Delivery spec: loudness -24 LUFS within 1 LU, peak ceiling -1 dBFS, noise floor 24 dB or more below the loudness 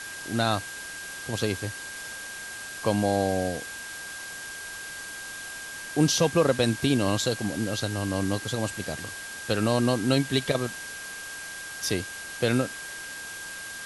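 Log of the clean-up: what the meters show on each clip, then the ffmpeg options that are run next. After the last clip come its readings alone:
steady tone 1600 Hz; tone level -38 dBFS; noise floor -39 dBFS; noise floor target -53 dBFS; loudness -28.5 LUFS; peak -9.5 dBFS; loudness target -24.0 LUFS
-> -af "bandreject=f=1.6k:w=30"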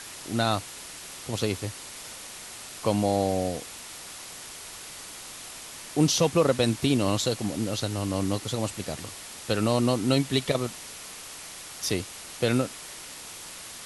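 steady tone none; noise floor -42 dBFS; noise floor target -52 dBFS
-> -af "afftdn=nr=10:nf=-42"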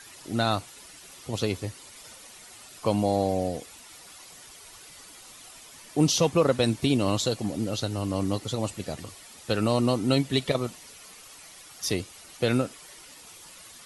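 noise floor -49 dBFS; noise floor target -51 dBFS
-> -af "afftdn=nr=6:nf=-49"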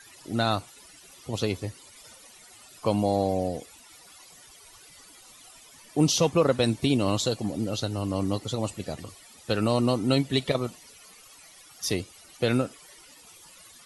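noise floor -52 dBFS; loudness -27.0 LUFS; peak -9.5 dBFS; loudness target -24.0 LUFS
-> -af "volume=3dB"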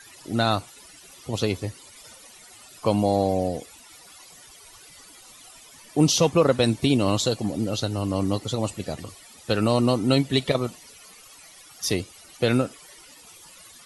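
loudness -24.0 LUFS; peak -6.5 dBFS; noise floor -49 dBFS

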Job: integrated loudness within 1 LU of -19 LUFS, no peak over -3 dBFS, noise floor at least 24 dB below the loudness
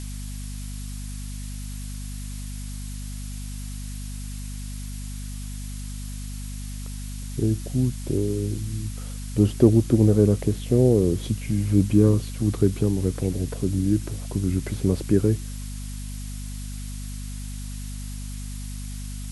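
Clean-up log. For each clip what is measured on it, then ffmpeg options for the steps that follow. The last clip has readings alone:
hum 50 Hz; harmonics up to 250 Hz; hum level -31 dBFS; noise floor -33 dBFS; noise floor target -50 dBFS; loudness -26.0 LUFS; peak -2.5 dBFS; loudness target -19.0 LUFS
-> -af "bandreject=f=50:t=h:w=6,bandreject=f=100:t=h:w=6,bandreject=f=150:t=h:w=6,bandreject=f=200:t=h:w=6,bandreject=f=250:t=h:w=6"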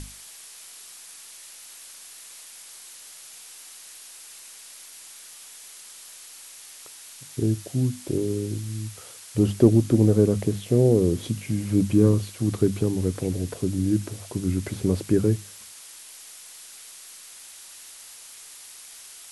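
hum none; noise floor -45 dBFS; noise floor target -48 dBFS
-> -af "afftdn=nr=6:nf=-45"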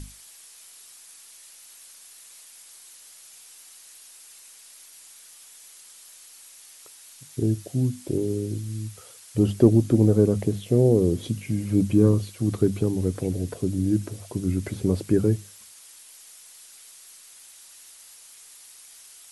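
noise floor -49 dBFS; loudness -23.5 LUFS; peak -3.5 dBFS; loudness target -19.0 LUFS
-> -af "volume=4.5dB,alimiter=limit=-3dB:level=0:latency=1"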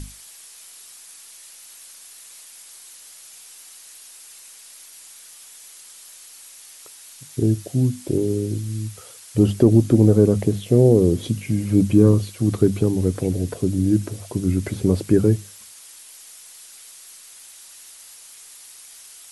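loudness -19.5 LUFS; peak -3.0 dBFS; noise floor -44 dBFS

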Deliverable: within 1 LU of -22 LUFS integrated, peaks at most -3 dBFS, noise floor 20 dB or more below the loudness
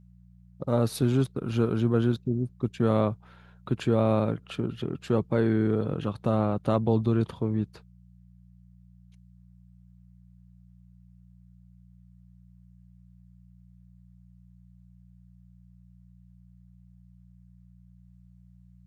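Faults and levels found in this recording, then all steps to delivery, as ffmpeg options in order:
hum 60 Hz; harmonics up to 180 Hz; hum level -53 dBFS; loudness -27.0 LUFS; peak -10.5 dBFS; loudness target -22.0 LUFS
-> -af "bandreject=f=60:t=h:w=4,bandreject=f=120:t=h:w=4,bandreject=f=180:t=h:w=4"
-af "volume=5dB"

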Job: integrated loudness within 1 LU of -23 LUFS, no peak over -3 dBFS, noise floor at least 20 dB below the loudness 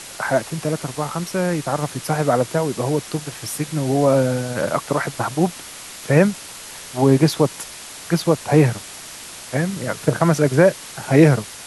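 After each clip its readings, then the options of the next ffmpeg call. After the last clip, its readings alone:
noise floor -37 dBFS; noise floor target -40 dBFS; loudness -19.5 LUFS; peak -1.5 dBFS; loudness target -23.0 LUFS
-> -af "afftdn=nr=6:nf=-37"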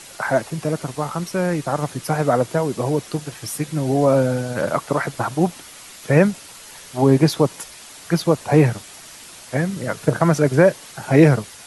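noise floor -41 dBFS; loudness -19.5 LUFS; peak -1.5 dBFS; loudness target -23.0 LUFS
-> -af "volume=-3.5dB"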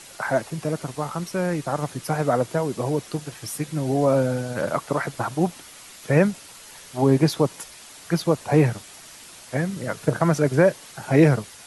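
loudness -23.0 LUFS; peak -5.0 dBFS; noise floor -45 dBFS

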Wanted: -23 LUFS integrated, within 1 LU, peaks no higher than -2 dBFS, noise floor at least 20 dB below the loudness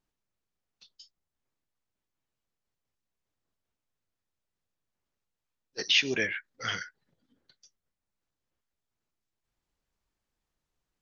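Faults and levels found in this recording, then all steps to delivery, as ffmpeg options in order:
loudness -28.5 LUFS; peak -8.5 dBFS; loudness target -23.0 LUFS
-> -af "volume=5.5dB"

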